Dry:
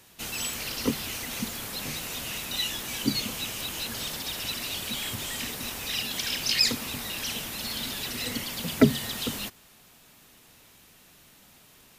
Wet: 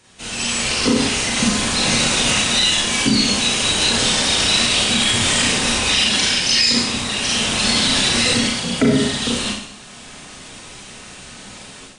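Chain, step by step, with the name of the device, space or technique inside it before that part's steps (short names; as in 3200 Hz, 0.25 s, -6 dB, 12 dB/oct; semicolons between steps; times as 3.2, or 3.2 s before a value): Schroeder reverb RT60 0.64 s, combs from 30 ms, DRR -4 dB; low-bitrate web radio (AGC gain up to 12 dB; limiter -8 dBFS, peak gain reduction 7 dB; gain +2.5 dB; MP3 48 kbps 22050 Hz)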